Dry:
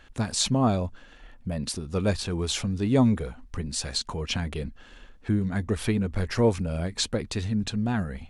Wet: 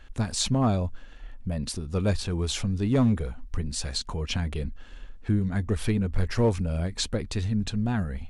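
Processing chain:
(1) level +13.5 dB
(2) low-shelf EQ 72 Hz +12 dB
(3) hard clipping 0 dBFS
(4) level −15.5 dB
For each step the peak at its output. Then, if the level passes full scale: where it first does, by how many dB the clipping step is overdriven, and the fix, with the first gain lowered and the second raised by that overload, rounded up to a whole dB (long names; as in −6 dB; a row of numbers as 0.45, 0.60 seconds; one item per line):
+4.0, +5.5, 0.0, −15.5 dBFS
step 1, 5.5 dB
step 1 +7.5 dB, step 4 −9.5 dB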